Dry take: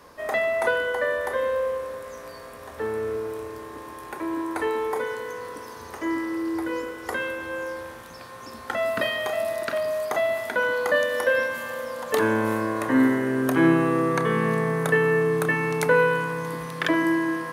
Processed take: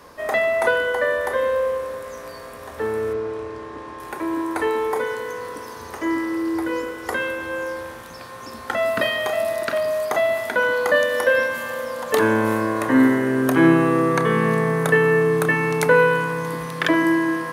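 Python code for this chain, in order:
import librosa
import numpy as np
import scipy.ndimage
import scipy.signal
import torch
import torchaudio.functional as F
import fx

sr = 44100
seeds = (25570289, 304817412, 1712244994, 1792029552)

y = fx.air_absorb(x, sr, metres=96.0, at=(3.13, 4.0))
y = y * 10.0 ** (4.0 / 20.0)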